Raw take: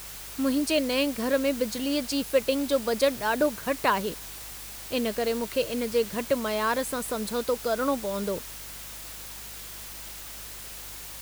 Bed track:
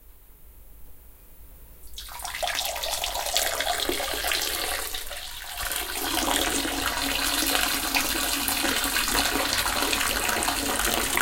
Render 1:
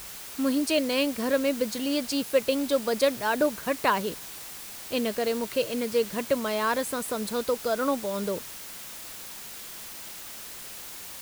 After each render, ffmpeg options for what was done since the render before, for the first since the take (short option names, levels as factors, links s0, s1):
-af "bandreject=f=50:t=h:w=4,bandreject=f=100:t=h:w=4,bandreject=f=150:t=h:w=4"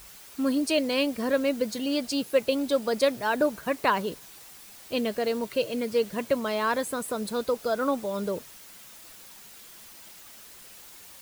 -af "afftdn=nr=8:nf=-41"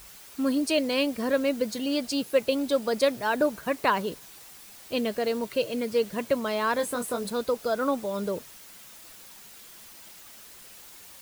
-filter_complex "[0:a]asettb=1/sr,asplit=3[s0][s1][s2];[s0]atrim=end=6.774[s3];[s1]atrim=start=6.77:end=7.3,asetpts=PTS-STARTPTS,afade=t=in:d=0.004:c=qsin,afade=t=out:st=0.526:d=0.004:c=qsin,asplit=2[s4][s5];[s5]adelay=21,volume=0.501[s6];[s4][s6]amix=inputs=2:normalize=0,atrim=end_sample=23373[s7];[s2]atrim=start=7.296[s8];[s3][s7]acrossfade=d=0.004:c1=hsin:c2=qsin[s9];[s9][s8]acrossfade=d=0.004:c1=qsin:c2=hsin"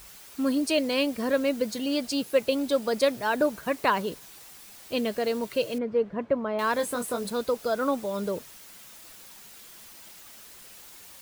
-filter_complex "[0:a]asettb=1/sr,asplit=3[s0][s1][s2];[s0]atrim=end=5.784[s3];[s1]atrim=start=5.78:end=6.59,asetpts=PTS-STARTPTS,afade=t=in:d=0.004:c=qsin,afade=t=out:st=0.806:d=0.004:c=qsin,lowpass=1400[s4];[s2]atrim=start=6.586[s5];[s3][s4]acrossfade=d=0.004:c1=hsin:c2=qsin[s6];[s6][s5]acrossfade=d=0.004:c1=qsin:c2=hsin"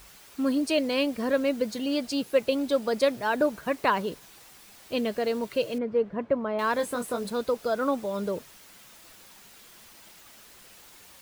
-af "highshelf=f=5300:g=-5.5"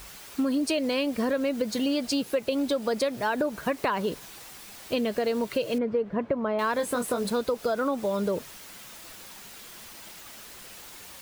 -filter_complex "[0:a]asplit=2[s0][s1];[s1]alimiter=limit=0.0891:level=0:latency=1:release=60,volume=1.06[s2];[s0][s2]amix=inputs=2:normalize=0,acompressor=threshold=0.0708:ratio=6"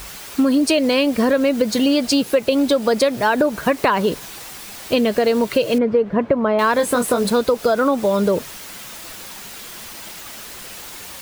-af "volume=3.16"